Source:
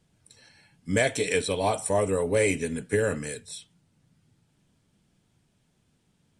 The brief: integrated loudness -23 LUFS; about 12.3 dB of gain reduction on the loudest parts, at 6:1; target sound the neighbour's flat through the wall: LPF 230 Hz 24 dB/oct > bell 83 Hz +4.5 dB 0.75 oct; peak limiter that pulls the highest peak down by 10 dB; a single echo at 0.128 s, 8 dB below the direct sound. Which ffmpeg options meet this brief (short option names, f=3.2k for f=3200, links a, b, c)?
-af "acompressor=threshold=-33dB:ratio=6,alimiter=level_in=5.5dB:limit=-24dB:level=0:latency=1,volume=-5.5dB,lowpass=f=230:w=0.5412,lowpass=f=230:w=1.3066,equalizer=f=83:t=o:w=0.75:g=4.5,aecho=1:1:128:0.398,volume=23dB"